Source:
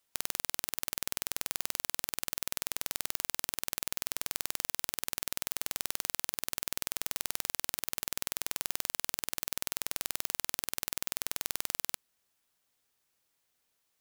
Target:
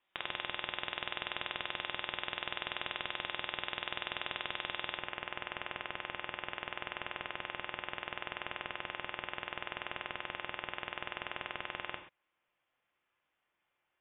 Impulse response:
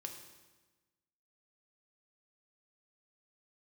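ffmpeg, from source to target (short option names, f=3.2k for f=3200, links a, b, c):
-filter_complex "[0:a]asetnsamples=n=441:p=0,asendcmd='4.95 highpass f 1300',highpass=f=200:p=1,lowpass=f=3.3k:t=q:w=0.5098,lowpass=f=3.3k:t=q:w=0.6013,lowpass=f=3.3k:t=q:w=0.9,lowpass=f=3.3k:t=q:w=2.563,afreqshift=-3900[a];[1:a]atrim=start_sample=2205,afade=t=out:st=0.19:d=0.01,atrim=end_sample=8820[b];[a][b]afir=irnorm=-1:irlink=0,volume=8.5dB"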